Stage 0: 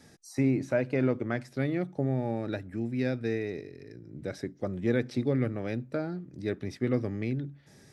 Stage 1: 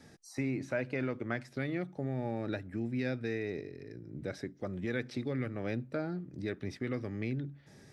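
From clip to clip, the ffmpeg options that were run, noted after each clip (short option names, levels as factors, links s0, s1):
-filter_complex "[0:a]highshelf=f=5800:g=-7,acrossover=split=1200[s0][s1];[s0]alimiter=level_in=1.33:limit=0.0631:level=0:latency=1:release=322,volume=0.75[s2];[s2][s1]amix=inputs=2:normalize=0"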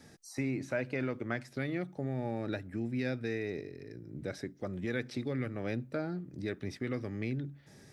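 -af "highshelf=f=7000:g=5.5"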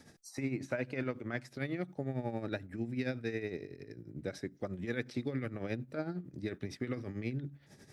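-af "tremolo=f=11:d=0.65,volume=1.12"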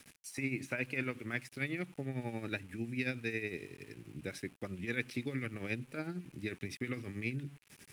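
-af "aeval=exprs='val(0)*gte(abs(val(0)),0.0015)':c=same,equalizer=f=630:t=o:w=0.67:g=-6,equalizer=f=2500:t=o:w=0.67:g=11,equalizer=f=10000:t=o:w=0.67:g=11,volume=0.841"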